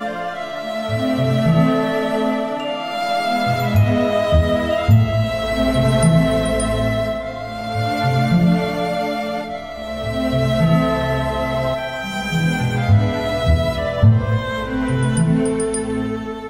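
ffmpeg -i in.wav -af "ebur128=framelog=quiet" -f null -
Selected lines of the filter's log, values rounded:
Integrated loudness:
  I:         -18.6 LUFS
  Threshold: -28.6 LUFS
Loudness range:
  LRA:         3.3 LU
  Threshold: -38.4 LUFS
  LRA low:   -20.0 LUFS
  LRA high:  -16.8 LUFS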